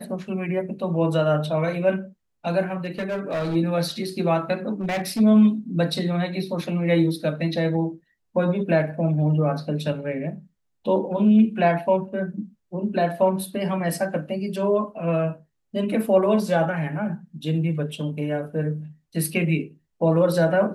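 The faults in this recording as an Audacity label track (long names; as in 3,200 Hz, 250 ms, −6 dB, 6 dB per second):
2.850000	3.560000	clipping −22.5 dBFS
4.810000	5.210000	clipping −22 dBFS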